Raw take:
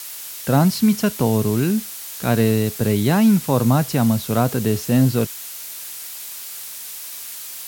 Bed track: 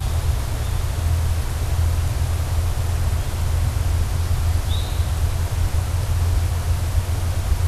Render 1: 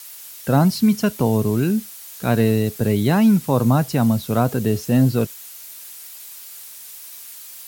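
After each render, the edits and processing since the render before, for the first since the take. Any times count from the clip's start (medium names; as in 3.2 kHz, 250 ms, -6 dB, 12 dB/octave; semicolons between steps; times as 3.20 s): noise reduction 7 dB, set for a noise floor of -34 dBFS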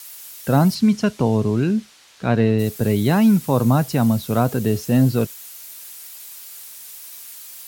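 0.74–2.58 s: low-pass 7.5 kHz -> 3.4 kHz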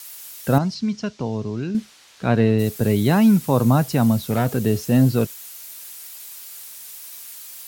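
0.58–1.75 s: four-pole ladder low-pass 7 kHz, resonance 35%; 4.17–4.57 s: hard clipper -14 dBFS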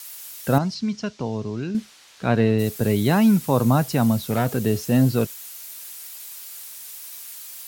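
bass shelf 390 Hz -2.5 dB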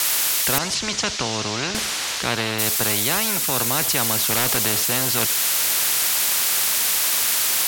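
gain riding within 5 dB 0.5 s; spectrum-flattening compressor 4:1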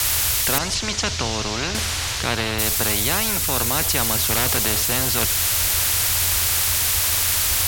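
add bed track -12 dB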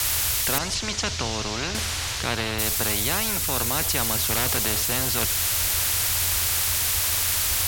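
trim -3.5 dB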